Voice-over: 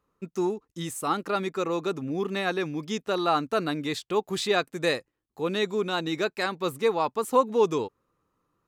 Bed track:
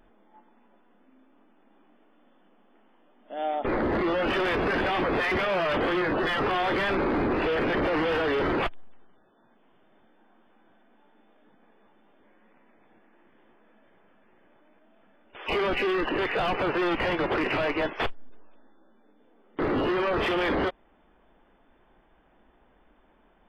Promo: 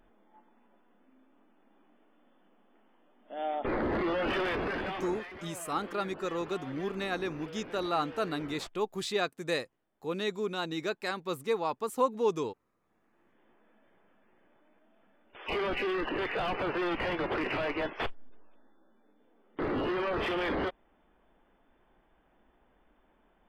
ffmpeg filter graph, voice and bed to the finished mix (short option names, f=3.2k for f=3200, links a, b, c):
-filter_complex "[0:a]adelay=4650,volume=-6dB[a];[1:a]volume=10.5dB,afade=t=out:st=4.38:d=0.92:silence=0.158489,afade=t=in:st=12.8:d=0.73:silence=0.177828[b];[a][b]amix=inputs=2:normalize=0"